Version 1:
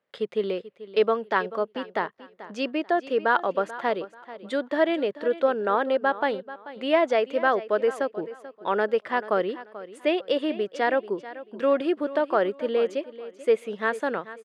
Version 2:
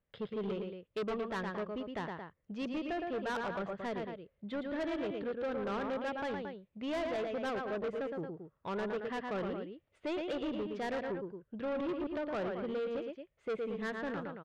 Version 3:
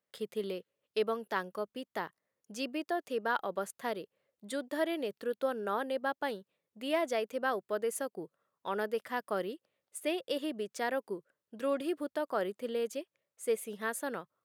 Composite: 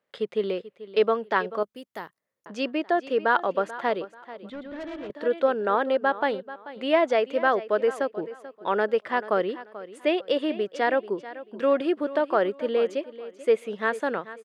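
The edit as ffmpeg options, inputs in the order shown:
ffmpeg -i take0.wav -i take1.wav -i take2.wav -filter_complex "[0:a]asplit=3[link_01][link_02][link_03];[link_01]atrim=end=1.632[link_04];[2:a]atrim=start=1.628:end=2.462[link_05];[link_02]atrim=start=2.458:end=4.502[link_06];[1:a]atrim=start=4.498:end=5.102[link_07];[link_03]atrim=start=5.098[link_08];[link_04][link_05]acrossfade=duration=0.004:curve1=hsin:curve2=hsin[link_09];[link_09][link_06]acrossfade=duration=0.004:curve1=hsin:curve2=hsin[link_10];[link_10][link_07]acrossfade=duration=0.004:curve1=hsin:curve2=hsin[link_11];[link_11][link_08]acrossfade=duration=0.004:curve1=hsin:curve2=hsin" out.wav

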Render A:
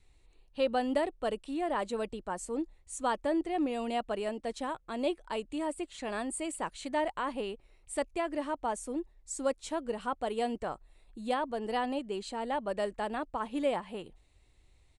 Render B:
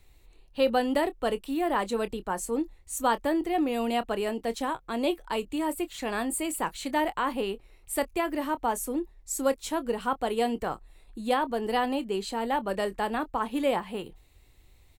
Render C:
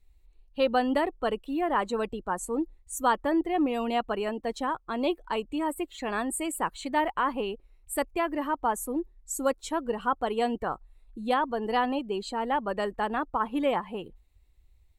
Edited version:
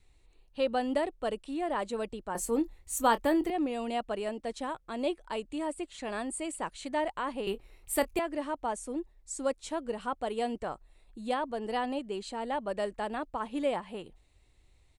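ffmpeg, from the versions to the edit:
ffmpeg -i take0.wav -i take1.wav -filter_complex "[1:a]asplit=2[link_01][link_02];[0:a]asplit=3[link_03][link_04][link_05];[link_03]atrim=end=2.352[link_06];[link_01]atrim=start=2.348:end=3.502[link_07];[link_04]atrim=start=3.498:end=7.472[link_08];[link_02]atrim=start=7.468:end=8.192[link_09];[link_05]atrim=start=8.188[link_10];[link_06][link_07]acrossfade=duration=0.004:curve1=hsin:curve2=hsin[link_11];[link_11][link_08]acrossfade=duration=0.004:curve1=hsin:curve2=hsin[link_12];[link_12][link_09]acrossfade=duration=0.004:curve1=hsin:curve2=hsin[link_13];[link_13][link_10]acrossfade=duration=0.004:curve1=hsin:curve2=hsin" out.wav

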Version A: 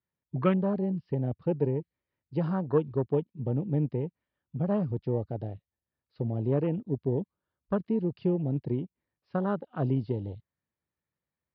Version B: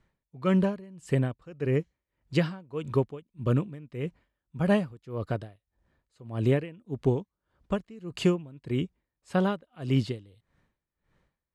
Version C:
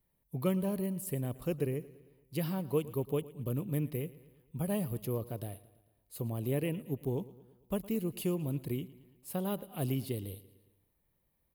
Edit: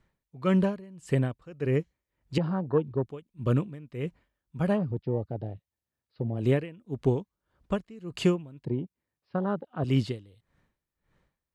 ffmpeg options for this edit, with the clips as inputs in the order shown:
ffmpeg -i take0.wav -i take1.wav -filter_complex "[0:a]asplit=3[link_01][link_02][link_03];[1:a]asplit=4[link_04][link_05][link_06][link_07];[link_04]atrim=end=2.382[link_08];[link_01]atrim=start=2.378:end=3.082[link_09];[link_05]atrim=start=3.078:end=4.79[link_10];[link_02]atrim=start=4.63:end=6.5[link_11];[link_06]atrim=start=6.34:end=8.652[link_12];[link_03]atrim=start=8.648:end=9.842[link_13];[link_07]atrim=start=9.838[link_14];[link_08][link_09]acrossfade=duration=0.004:curve1=hsin:curve2=hsin[link_15];[link_15][link_10]acrossfade=duration=0.004:curve1=hsin:curve2=hsin[link_16];[link_16][link_11]acrossfade=duration=0.16:curve1=tri:curve2=tri[link_17];[link_17][link_12]acrossfade=duration=0.16:curve1=tri:curve2=tri[link_18];[link_18][link_13]acrossfade=duration=0.004:curve1=hsin:curve2=hsin[link_19];[link_19][link_14]acrossfade=duration=0.004:curve1=hsin:curve2=hsin" out.wav

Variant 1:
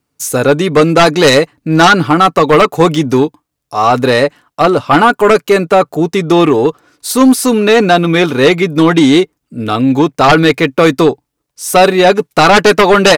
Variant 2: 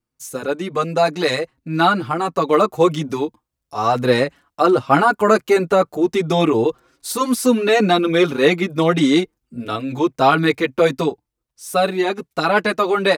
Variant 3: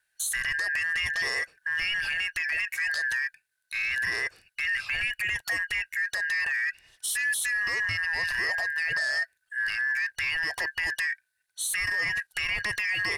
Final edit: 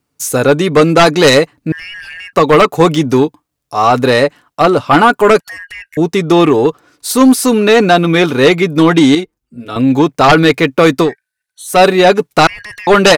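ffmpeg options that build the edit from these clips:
ffmpeg -i take0.wav -i take1.wav -i take2.wav -filter_complex "[2:a]asplit=4[link_01][link_02][link_03][link_04];[0:a]asplit=6[link_05][link_06][link_07][link_08][link_09][link_10];[link_05]atrim=end=1.722[link_11];[link_01]atrim=start=1.718:end=2.332[link_12];[link_06]atrim=start=2.328:end=5.402[link_13];[link_02]atrim=start=5.398:end=5.972[link_14];[link_07]atrim=start=5.968:end=9.152[link_15];[1:a]atrim=start=9.148:end=9.762[link_16];[link_08]atrim=start=9.758:end=11.16[link_17];[link_03]atrim=start=11:end=11.8[link_18];[link_09]atrim=start=11.64:end=12.472[link_19];[link_04]atrim=start=12.468:end=12.872[link_20];[link_10]atrim=start=12.868[link_21];[link_11][link_12]acrossfade=duration=0.004:curve1=hsin:curve2=hsin[link_22];[link_22][link_13]acrossfade=duration=0.004:curve1=hsin:curve2=hsin[link_23];[link_23][link_14]acrossfade=duration=0.004:curve1=hsin:curve2=hsin[link_24];[link_24][link_15]acrossfade=duration=0.004:curve1=hsin:curve2=hsin[link_25];[link_25][link_16]acrossfade=duration=0.004:curve1=hsin:curve2=hsin[link_26];[link_26][link_17]acrossfade=duration=0.004:curve1=hsin:curve2=hsin[link_27];[link_27][link_18]acrossfade=duration=0.16:curve1=tri:curve2=tri[link_28];[link_28][link_19]acrossfade=duration=0.16:curve1=tri:curve2=tri[link_29];[link_29][link_20]acrossfade=duration=0.004:curve1=hsin:curve2=hsin[link_30];[link_30][link_21]acrossfade=duration=0.004:curve1=hsin:curve2=hsin" out.wav

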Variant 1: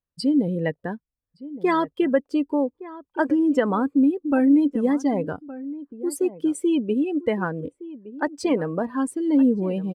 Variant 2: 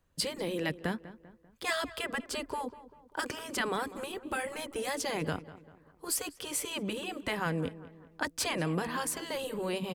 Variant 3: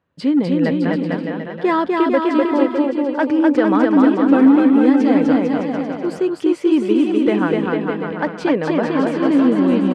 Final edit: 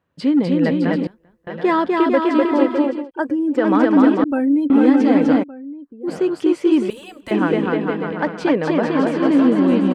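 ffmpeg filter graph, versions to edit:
ffmpeg -i take0.wav -i take1.wav -i take2.wav -filter_complex "[1:a]asplit=2[link_01][link_02];[0:a]asplit=3[link_03][link_04][link_05];[2:a]asplit=6[link_06][link_07][link_08][link_09][link_10][link_11];[link_06]atrim=end=1.072[link_12];[link_01]atrim=start=1.068:end=1.472[link_13];[link_07]atrim=start=1.468:end=3.11[link_14];[link_03]atrim=start=2.87:end=3.71[link_15];[link_08]atrim=start=3.47:end=4.242[link_16];[link_04]atrim=start=4.238:end=4.702[link_17];[link_09]atrim=start=4.698:end=5.44[link_18];[link_05]atrim=start=5.42:end=6.09[link_19];[link_10]atrim=start=6.07:end=6.902[link_20];[link_02]atrim=start=6.898:end=7.312[link_21];[link_11]atrim=start=7.308[link_22];[link_12][link_13]acrossfade=duration=0.004:curve1=hsin:curve2=hsin[link_23];[link_23][link_14]acrossfade=duration=0.004:curve1=hsin:curve2=hsin[link_24];[link_24][link_15]acrossfade=duration=0.24:curve1=tri:curve2=tri[link_25];[link_25][link_16]acrossfade=duration=0.24:curve1=tri:curve2=tri[link_26];[link_26][link_17]acrossfade=duration=0.004:curve1=hsin:curve2=hsin[link_27];[link_27][link_18]acrossfade=duration=0.004:curve1=hsin:curve2=hsin[link_28];[link_28][link_19]acrossfade=duration=0.02:curve1=tri:curve2=tri[link_29];[link_29][link_20]acrossfade=duration=0.02:curve1=tri:curve2=tri[link_30];[link_30][link_21]acrossfade=duration=0.004:curve1=hsin:curve2=hsin[link_31];[link_31][link_22]acrossfade=duration=0.004:curve1=hsin:curve2=hsin" out.wav

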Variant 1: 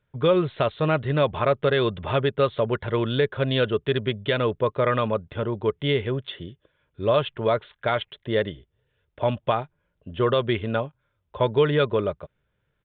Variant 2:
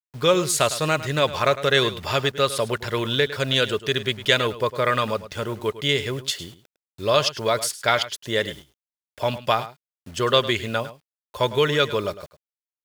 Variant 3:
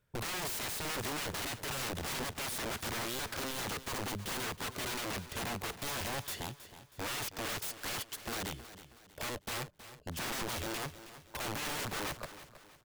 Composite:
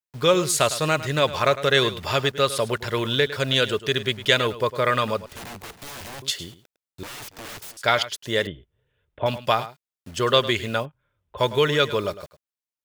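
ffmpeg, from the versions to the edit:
ffmpeg -i take0.wav -i take1.wav -i take2.wav -filter_complex "[2:a]asplit=2[link_01][link_02];[0:a]asplit=2[link_03][link_04];[1:a]asplit=5[link_05][link_06][link_07][link_08][link_09];[link_05]atrim=end=5.262[link_10];[link_01]atrim=start=5.258:end=6.222[link_11];[link_06]atrim=start=6.218:end=7.032[link_12];[link_02]atrim=start=7.028:end=7.772[link_13];[link_07]atrim=start=7.768:end=8.472[link_14];[link_03]atrim=start=8.468:end=9.262[link_15];[link_08]atrim=start=9.258:end=10.86[link_16];[link_04]atrim=start=10.82:end=11.41[link_17];[link_09]atrim=start=11.37[link_18];[link_10][link_11]acrossfade=duration=0.004:curve1=hsin:curve2=hsin[link_19];[link_19][link_12]acrossfade=duration=0.004:curve1=hsin:curve2=hsin[link_20];[link_20][link_13]acrossfade=duration=0.004:curve1=hsin:curve2=hsin[link_21];[link_21][link_14]acrossfade=duration=0.004:curve1=hsin:curve2=hsin[link_22];[link_22][link_15]acrossfade=duration=0.004:curve1=hsin:curve2=hsin[link_23];[link_23][link_16]acrossfade=duration=0.004:curve1=hsin:curve2=hsin[link_24];[link_24][link_17]acrossfade=duration=0.04:curve1=tri:curve2=tri[link_25];[link_25][link_18]acrossfade=duration=0.04:curve1=tri:curve2=tri" out.wav

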